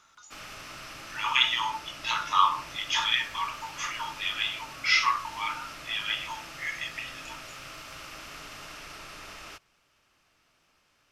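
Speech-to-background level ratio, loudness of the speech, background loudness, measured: 14.0 dB, −28.0 LKFS, −42.0 LKFS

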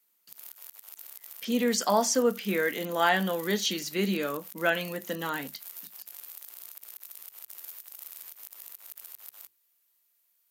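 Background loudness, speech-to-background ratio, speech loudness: −43.5 LKFS, 15.5 dB, −28.0 LKFS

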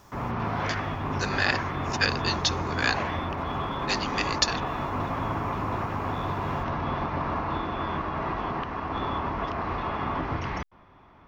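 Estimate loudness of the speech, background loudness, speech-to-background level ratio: −29.0 LKFS, −30.0 LKFS, 1.0 dB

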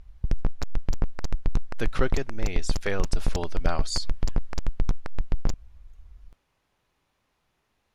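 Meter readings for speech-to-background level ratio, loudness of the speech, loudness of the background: 0.5 dB, −33.0 LKFS, −33.5 LKFS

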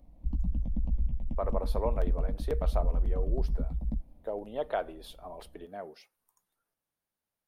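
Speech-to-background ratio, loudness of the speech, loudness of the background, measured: −4.0 dB, −38.0 LKFS, −34.0 LKFS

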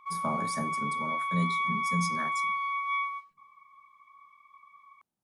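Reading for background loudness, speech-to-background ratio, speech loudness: −30.5 LKFS, −5.0 dB, −35.5 LKFS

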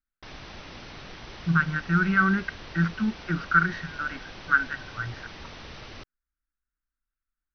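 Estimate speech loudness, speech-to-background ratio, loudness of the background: −26.0 LKFS, 16.5 dB, −42.5 LKFS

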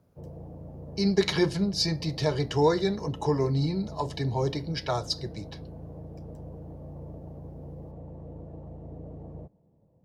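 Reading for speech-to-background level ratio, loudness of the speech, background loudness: 16.0 dB, −27.5 LKFS, −43.5 LKFS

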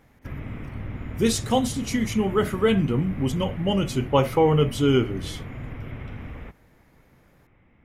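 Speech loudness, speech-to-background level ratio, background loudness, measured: −23.0 LKFS, 13.0 dB, −36.0 LKFS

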